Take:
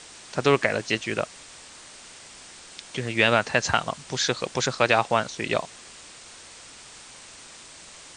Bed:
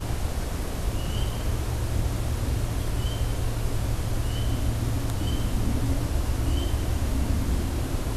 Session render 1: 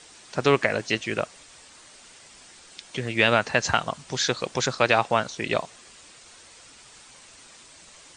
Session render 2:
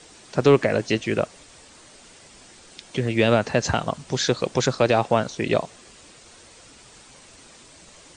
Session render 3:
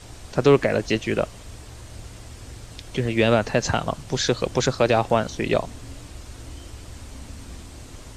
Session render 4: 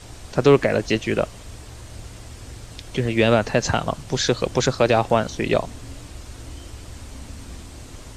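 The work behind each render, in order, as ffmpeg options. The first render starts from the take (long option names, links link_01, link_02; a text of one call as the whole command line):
ffmpeg -i in.wav -af "afftdn=noise_reduction=6:noise_floor=-46" out.wav
ffmpeg -i in.wav -filter_complex "[0:a]acrossover=split=650|3600[link_01][link_02][link_03];[link_01]acontrast=78[link_04];[link_02]alimiter=limit=-16dB:level=0:latency=1[link_05];[link_04][link_05][link_03]amix=inputs=3:normalize=0" out.wav
ffmpeg -i in.wav -i bed.wav -filter_complex "[1:a]volume=-14dB[link_01];[0:a][link_01]amix=inputs=2:normalize=0" out.wav
ffmpeg -i in.wav -af "volume=1.5dB" out.wav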